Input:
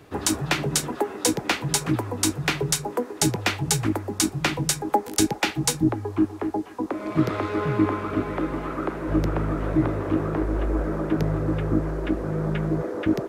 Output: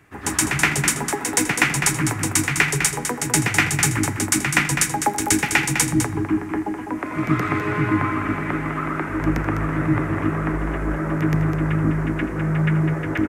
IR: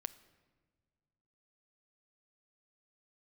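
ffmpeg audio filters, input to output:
-filter_complex "[0:a]equalizer=f=500:t=o:w=1:g=-8,equalizer=f=2k:t=o:w=1:g=10,equalizer=f=4k:t=o:w=1:g=-9,equalizer=f=8k:t=o:w=1:g=4,aecho=1:1:204:0.422,asplit=2[a][b];[1:a]atrim=start_sample=2205,adelay=122[c];[b][c]afir=irnorm=-1:irlink=0,volume=9.5dB[d];[a][d]amix=inputs=2:normalize=0,volume=-4.5dB"

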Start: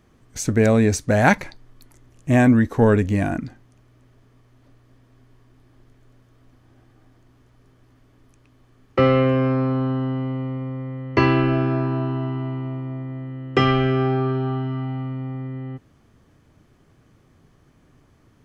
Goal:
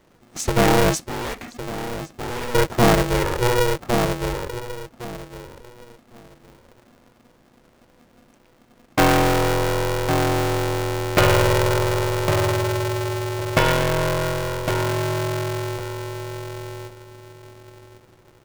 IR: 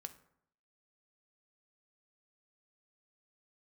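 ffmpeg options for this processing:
-filter_complex "[0:a]asplit=2[a][b];[b]adelay=1109,lowpass=f=910:p=1,volume=-4dB,asplit=2[c][d];[d]adelay=1109,lowpass=f=910:p=1,volume=0.23,asplit=2[e][f];[f]adelay=1109,lowpass=f=910:p=1,volume=0.23[g];[a][c][e][g]amix=inputs=4:normalize=0,asettb=1/sr,asplit=3[h][i][j];[h]atrim=end=1.044[k];[i]atrim=start=1.04:end=2.55,asetpts=PTS-STARTPTS,afade=t=in:d=0.004:c=qsin,afade=t=out:st=1.506:d=0.004:c=qsin,aeval=exprs='(tanh(22.4*val(0)+0.35)-tanh(0.35))/22.4':c=same[l];[j]atrim=start=2.546[m];[k][l]acrossfade=d=0.004:c1=hsin:c2=qsin[n];[n][m]acrossfade=d=0.004:c1=qsin:c2=hsin,aeval=exprs='val(0)*sgn(sin(2*PI*240*n/s))':c=same"

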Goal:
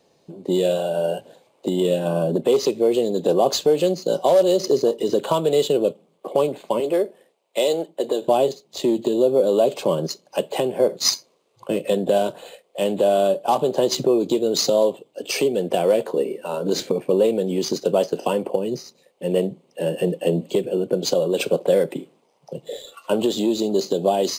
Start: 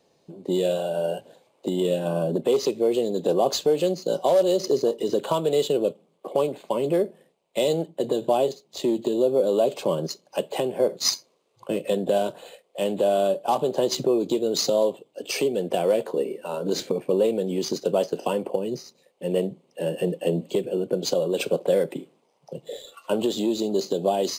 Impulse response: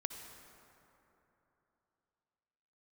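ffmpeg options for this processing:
-filter_complex "[0:a]asettb=1/sr,asplit=3[a][b][c];[a]atrim=end=6.804[d];[b]atrim=start=6.8:end=8.28,asetpts=PTS-STARTPTS,afade=t=in:d=0.004:c=qsin,afade=t=out:st=1.476:d=0.004:c=qsin,highpass=340[e];[c]atrim=start=8.276[f];[d][e]acrossfade=d=0.004:c1=hsin:c2=qsin[g];[g][f]acrossfade=d=0.004:c1=qsin:c2=hsin,volume=3.5dB"

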